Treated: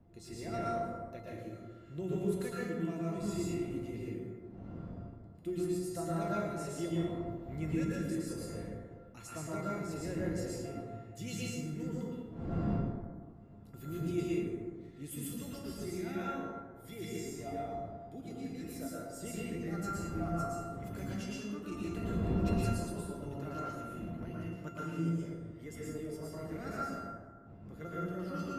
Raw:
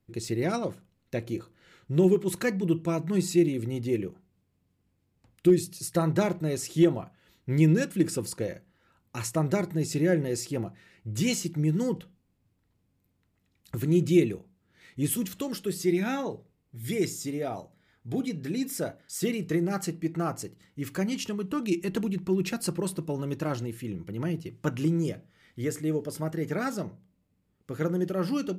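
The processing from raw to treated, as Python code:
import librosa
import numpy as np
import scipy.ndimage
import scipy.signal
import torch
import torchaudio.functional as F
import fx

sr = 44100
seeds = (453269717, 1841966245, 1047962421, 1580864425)

y = fx.dmg_wind(x, sr, seeds[0], corner_hz=200.0, level_db=-33.0)
y = fx.highpass(y, sr, hz=100.0, slope=6)
y = fx.low_shelf(y, sr, hz=180.0, db=5.0)
y = fx.hum_notches(y, sr, base_hz=60, count=3)
y = fx.comb_fb(y, sr, f0_hz=690.0, decay_s=0.4, harmonics='all', damping=0.0, mix_pct=90)
y = fx.rev_plate(y, sr, seeds[1], rt60_s=1.6, hf_ratio=0.4, predelay_ms=100, drr_db=-6.5)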